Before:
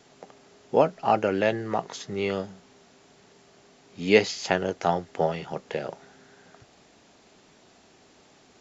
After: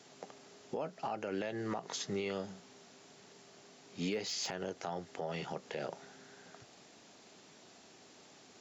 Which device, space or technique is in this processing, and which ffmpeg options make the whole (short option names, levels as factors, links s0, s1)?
broadcast voice chain: -af "highpass=110,deesser=0.75,acompressor=threshold=0.0501:ratio=5,equalizer=f=6000:t=o:w=1.7:g=4,alimiter=level_in=1.06:limit=0.0631:level=0:latency=1:release=81,volume=0.944,volume=0.708"